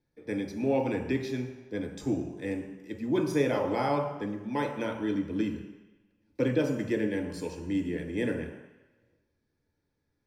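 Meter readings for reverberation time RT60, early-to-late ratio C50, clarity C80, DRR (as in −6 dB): 1.1 s, 6.0 dB, 8.5 dB, 1.0 dB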